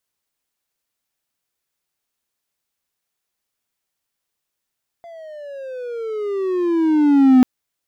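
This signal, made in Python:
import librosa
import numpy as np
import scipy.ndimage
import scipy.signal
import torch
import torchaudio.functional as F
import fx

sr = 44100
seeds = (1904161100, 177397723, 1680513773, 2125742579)

y = fx.riser_tone(sr, length_s=2.39, level_db=-4.5, wave='triangle', hz=688.0, rise_st=-17.5, swell_db=29.0)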